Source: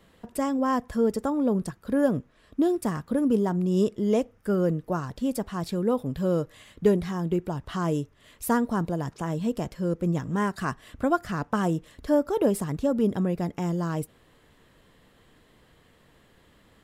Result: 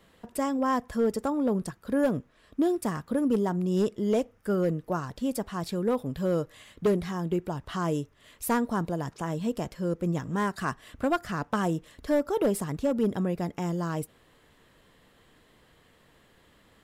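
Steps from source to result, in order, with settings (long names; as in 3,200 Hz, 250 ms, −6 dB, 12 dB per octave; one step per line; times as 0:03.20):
low-shelf EQ 370 Hz −3.5 dB
hard clipping −18 dBFS, distortion −19 dB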